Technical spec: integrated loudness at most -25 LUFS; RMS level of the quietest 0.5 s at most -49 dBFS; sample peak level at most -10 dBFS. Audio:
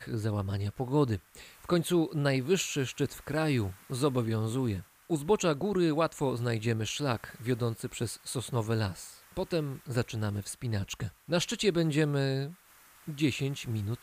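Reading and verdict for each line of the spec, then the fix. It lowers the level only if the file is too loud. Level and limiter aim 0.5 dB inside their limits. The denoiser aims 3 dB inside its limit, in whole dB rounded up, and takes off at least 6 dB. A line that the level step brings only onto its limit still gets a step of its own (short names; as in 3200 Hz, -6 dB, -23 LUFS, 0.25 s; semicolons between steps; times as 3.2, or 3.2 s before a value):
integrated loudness -31.0 LUFS: OK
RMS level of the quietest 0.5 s -58 dBFS: OK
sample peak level -14.5 dBFS: OK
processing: none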